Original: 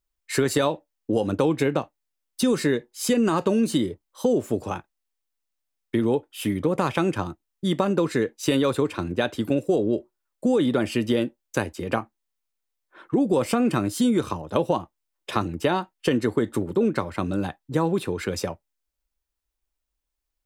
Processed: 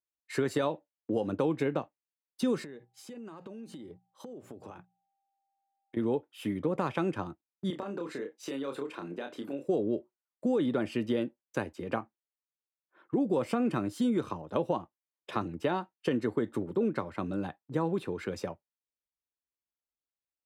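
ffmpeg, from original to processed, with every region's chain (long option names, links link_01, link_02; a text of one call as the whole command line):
ffmpeg -i in.wav -filter_complex "[0:a]asettb=1/sr,asplit=3[link_01][link_02][link_03];[link_01]atrim=end=2.644[link_04];[link_02]atrim=start=2.64:end=5.97,asetpts=PTS-STARTPTS,afade=type=in:duration=0.004:curve=qsin,afade=type=out:start_time=3.326:duration=0.004:curve=qsin,bandreject=frequency=60:width_type=h:width=6,bandreject=frequency=120:width_type=h:width=6,bandreject=frequency=180:width_type=h:width=6,acompressor=threshold=-33dB:ratio=20:attack=3.2:release=140:knee=1:detection=peak,aeval=exprs='val(0)+0.000501*sin(2*PI*790*n/s)':channel_layout=same[link_05];[link_03]atrim=start=5.966[link_06];[link_04][link_05]acrossfade=duration=0.004:curve1=hsin:curve2=qsin[link_07];[link_07][link_06]acrossfade=duration=0.004:curve1=qsin:curve2=hsin,asettb=1/sr,asplit=3[link_08][link_09][link_10];[link_08]atrim=end=7.704[link_11];[link_09]atrim=start=7.7:end=9.68,asetpts=PTS-STARTPTS,afade=type=in:duration=0.004:curve=qsin,afade=type=out:start_time=1.976:duration=0.004:curve=qsin,highpass=250,acompressor=threshold=-27dB:ratio=4:attack=3.2:release=140:knee=1:detection=peak,asplit=2[link_12][link_13];[link_13]adelay=29,volume=-6dB[link_14];[link_12][link_14]amix=inputs=2:normalize=0,atrim=end_sample=87318[link_15];[link_10]atrim=start=9.676[link_16];[link_11][link_15]acrossfade=duration=0.004:curve1=hsin:curve2=qsin[link_17];[link_17][link_16]acrossfade=duration=0.004:curve1=qsin:curve2=hsin,agate=range=-6dB:threshold=-44dB:ratio=16:detection=peak,highpass=110,highshelf=frequency=4300:gain=-11.5,volume=-7dB" out.wav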